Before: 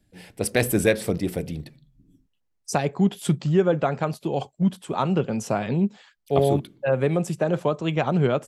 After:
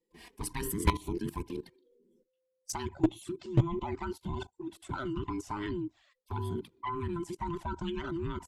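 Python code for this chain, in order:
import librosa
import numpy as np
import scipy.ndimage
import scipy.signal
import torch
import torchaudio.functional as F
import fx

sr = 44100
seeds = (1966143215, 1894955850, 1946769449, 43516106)

y = fx.band_invert(x, sr, width_hz=500)
y = fx.level_steps(y, sr, step_db=16)
y = fx.env_flanger(y, sr, rest_ms=5.8, full_db=-26.0)
y = fx.clip_asym(y, sr, top_db=-20.0, bottom_db=-13.5)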